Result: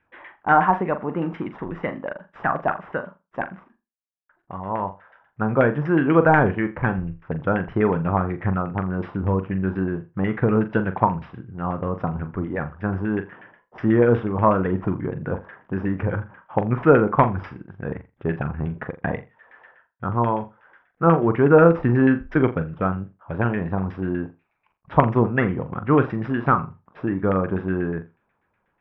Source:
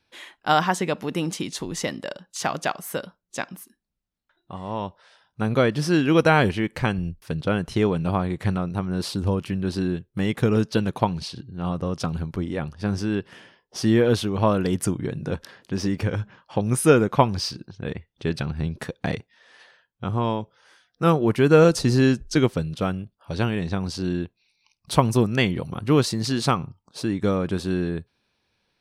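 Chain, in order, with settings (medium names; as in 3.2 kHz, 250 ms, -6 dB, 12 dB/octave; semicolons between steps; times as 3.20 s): CVSD coder 64 kbps; LFO low-pass saw down 8.2 Hz 810–2000 Hz; Savitzky-Golay filter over 25 samples; on a send: flutter echo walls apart 7.2 m, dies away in 0.25 s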